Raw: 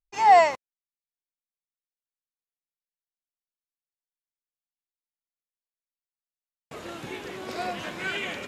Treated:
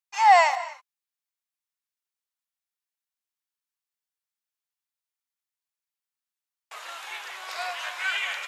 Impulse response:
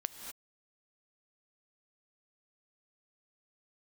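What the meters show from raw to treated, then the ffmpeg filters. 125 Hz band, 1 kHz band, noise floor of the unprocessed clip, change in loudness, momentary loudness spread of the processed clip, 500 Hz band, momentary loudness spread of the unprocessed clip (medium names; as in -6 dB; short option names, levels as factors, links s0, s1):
under -40 dB, 0.0 dB, under -85 dBFS, 0.0 dB, 21 LU, -4.0 dB, 22 LU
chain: -filter_complex "[0:a]highpass=f=830:w=0.5412,highpass=f=830:w=1.3066,asplit=2[s0][s1];[1:a]atrim=start_sample=2205[s2];[s1][s2]afir=irnorm=-1:irlink=0,volume=0.631[s3];[s0][s3]amix=inputs=2:normalize=0"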